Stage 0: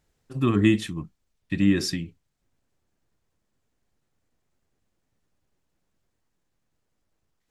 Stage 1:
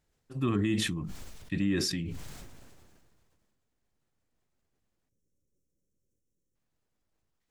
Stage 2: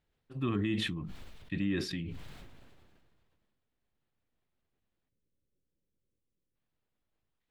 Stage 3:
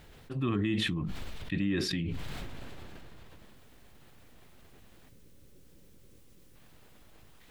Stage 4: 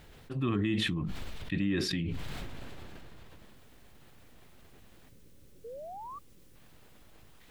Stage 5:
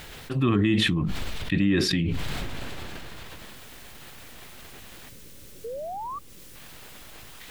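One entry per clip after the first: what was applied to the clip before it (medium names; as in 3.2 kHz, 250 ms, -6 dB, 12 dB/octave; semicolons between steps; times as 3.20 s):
spectral selection erased 5.09–6.55 s, 590–5300 Hz; peak limiter -14.5 dBFS, peak gain reduction 8 dB; decay stretcher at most 28 dB/s; trim -5.5 dB
resonant high shelf 4.7 kHz -8.5 dB, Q 1.5; trim -3.5 dB
level flattener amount 50%; trim +1 dB
painted sound rise, 5.64–6.19 s, 440–1200 Hz -43 dBFS
tape noise reduction on one side only encoder only; trim +8 dB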